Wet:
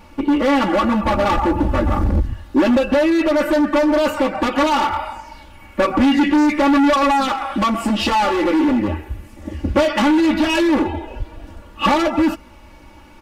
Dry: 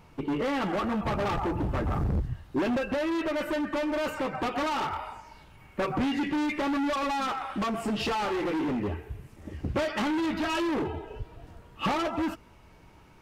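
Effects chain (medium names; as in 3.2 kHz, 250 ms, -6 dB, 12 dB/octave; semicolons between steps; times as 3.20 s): comb 3.5 ms, depth 94%; trim +8.5 dB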